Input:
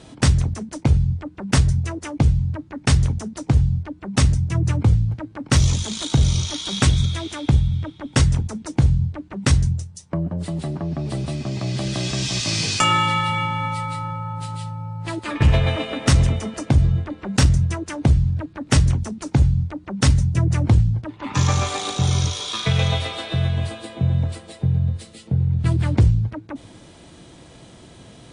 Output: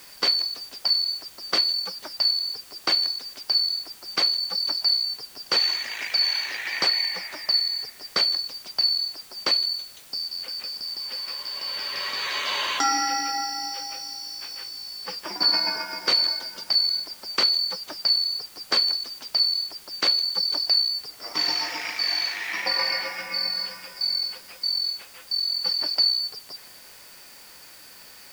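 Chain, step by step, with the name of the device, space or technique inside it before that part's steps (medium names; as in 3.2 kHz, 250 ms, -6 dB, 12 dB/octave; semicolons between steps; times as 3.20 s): split-band scrambled radio (four frequency bands reordered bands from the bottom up 2341; band-pass 300–3200 Hz; white noise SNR 22 dB)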